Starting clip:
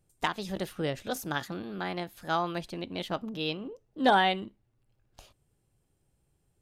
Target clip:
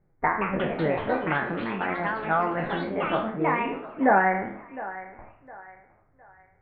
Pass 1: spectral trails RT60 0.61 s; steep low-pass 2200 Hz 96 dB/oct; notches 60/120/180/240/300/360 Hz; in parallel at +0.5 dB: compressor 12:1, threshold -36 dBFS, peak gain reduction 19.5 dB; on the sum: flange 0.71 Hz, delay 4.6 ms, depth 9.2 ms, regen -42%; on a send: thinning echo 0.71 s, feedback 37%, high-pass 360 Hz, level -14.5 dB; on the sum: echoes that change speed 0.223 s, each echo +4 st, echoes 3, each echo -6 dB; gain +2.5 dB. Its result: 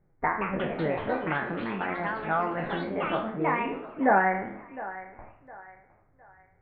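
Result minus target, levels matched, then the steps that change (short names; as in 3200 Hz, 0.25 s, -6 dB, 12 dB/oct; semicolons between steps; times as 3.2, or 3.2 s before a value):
compressor: peak gain reduction +10 dB
change: compressor 12:1, threshold -25 dBFS, peak gain reduction 9.5 dB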